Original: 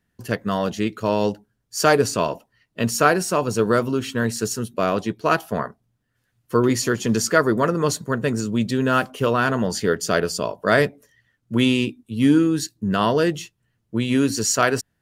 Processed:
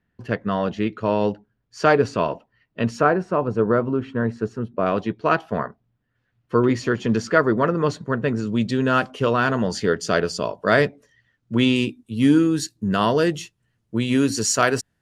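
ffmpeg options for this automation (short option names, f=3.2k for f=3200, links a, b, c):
-af "asetnsamples=n=441:p=0,asendcmd='3.01 lowpass f 1400;4.86 lowpass f 3100;8.47 lowpass f 5900;11.76 lowpass f 11000',lowpass=2.9k"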